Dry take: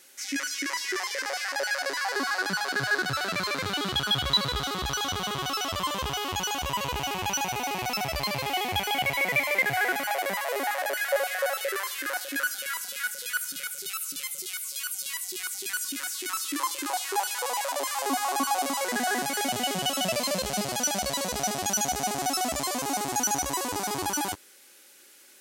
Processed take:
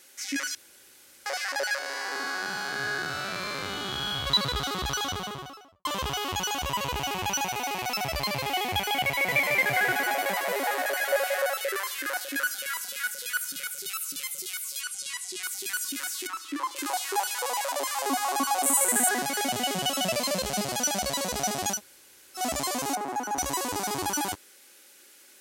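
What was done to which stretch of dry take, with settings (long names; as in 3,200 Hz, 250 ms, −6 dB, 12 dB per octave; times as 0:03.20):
0:00.55–0:01.26: fill with room tone
0:01.78–0:04.27: spectrum smeared in time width 184 ms
0:04.96–0:05.85: fade out and dull
0:07.47–0:08.04: low-shelf EQ 260 Hz −6 dB
0:09.10–0:11.42: single-tap delay 179 ms −5.5 dB
0:14.81–0:15.43: low-pass filter 10,000 Hz 24 dB per octave
0:16.27–0:16.76: low-pass filter 1,800 Hz 6 dB per octave
0:18.63–0:19.09: high shelf with overshoot 6,600 Hz +9.5 dB, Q 3
0:21.76–0:22.39: fill with room tone, crossfade 0.10 s
0:22.95–0:23.38: three-way crossover with the lows and the highs turned down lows −17 dB, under 220 Hz, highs −16 dB, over 2,000 Hz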